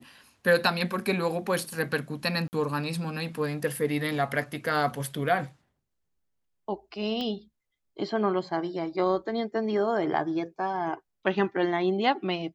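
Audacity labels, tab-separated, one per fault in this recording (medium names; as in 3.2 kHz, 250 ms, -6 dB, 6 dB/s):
2.480000	2.530000	dropout 49 ms
7.210000	7.210000	pop -21 dBFS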